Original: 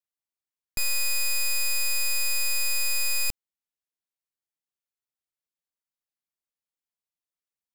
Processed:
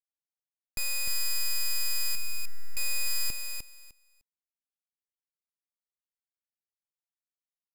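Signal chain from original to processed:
0:02.15–0:02.77: high shelf with overshoot 2,600 Hz −13.5 dB, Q 3
leveller curve on the samples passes 5
repeating echo 303 ms, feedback 17%, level −6 dB
level −6.5 dB

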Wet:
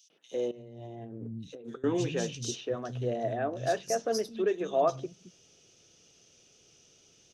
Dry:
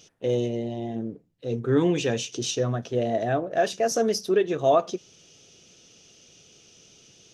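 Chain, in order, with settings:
three-band delay without the direct sound highs, mids, lows 100/320 ms, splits 200/3,200 Hz
0:00.51–0:01.84: compressor whose output falls as the input rises −38 dBFS, ratio −1
level −6 dB

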